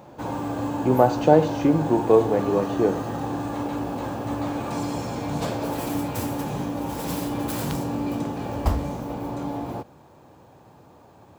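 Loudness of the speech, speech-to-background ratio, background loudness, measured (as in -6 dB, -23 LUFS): -21.0 LUFS, 8.0 dB, -29.0 LUFS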